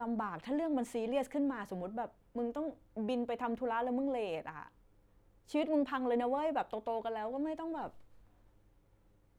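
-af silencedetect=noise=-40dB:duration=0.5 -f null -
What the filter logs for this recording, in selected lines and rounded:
silence_start: 4.63
silence_end: 5.54 | silence_duration: 0.92
silence_start: 7.88
silence_end: 9.38 | silence_duration: 1.50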